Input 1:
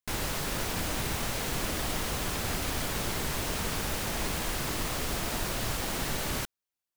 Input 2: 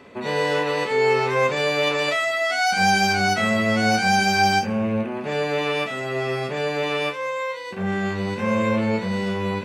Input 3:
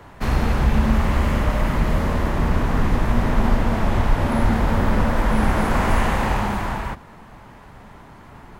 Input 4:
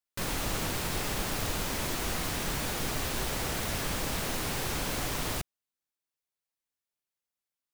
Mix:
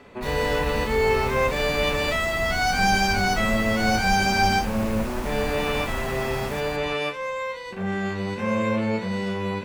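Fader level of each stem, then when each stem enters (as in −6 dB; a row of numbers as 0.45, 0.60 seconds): −9.5, −2.5, −12.0, −12.5 decibels; 0.15, 0.00, 0.00, 1.35 seconds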